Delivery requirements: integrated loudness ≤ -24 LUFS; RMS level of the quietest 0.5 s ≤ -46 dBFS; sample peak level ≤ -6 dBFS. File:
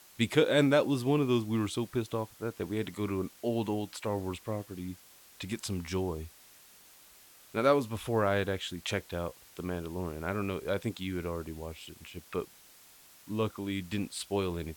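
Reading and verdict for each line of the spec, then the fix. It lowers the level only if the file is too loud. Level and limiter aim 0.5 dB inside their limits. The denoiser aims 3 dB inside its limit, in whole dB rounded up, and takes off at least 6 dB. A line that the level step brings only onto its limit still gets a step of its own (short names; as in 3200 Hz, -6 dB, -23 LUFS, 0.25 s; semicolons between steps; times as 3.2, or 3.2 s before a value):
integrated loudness -32.5 LUFS: OK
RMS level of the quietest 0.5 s -57 dBFS: OK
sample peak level -12.5 dBFS: OK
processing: none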